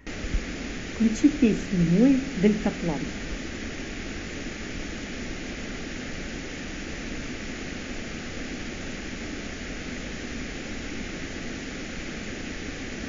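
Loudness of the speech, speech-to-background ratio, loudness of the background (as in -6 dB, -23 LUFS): -23.5 LUFS, 11.0 dB, -34.5 LUFS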